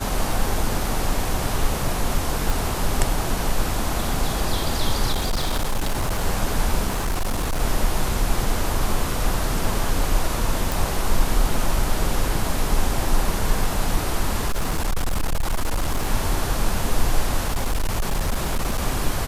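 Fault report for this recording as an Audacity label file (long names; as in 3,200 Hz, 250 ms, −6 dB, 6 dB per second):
2.500000	2.500000	click
5.120000	6.250000	clipping −18 dBFS
6.870000	7.610000	clipping −19 dBFS
10.720000	10.720000	click
14.480000	16.080000	clipping −17.5 dBFS
17.450000	18.790000	clipping −17.5 dBFS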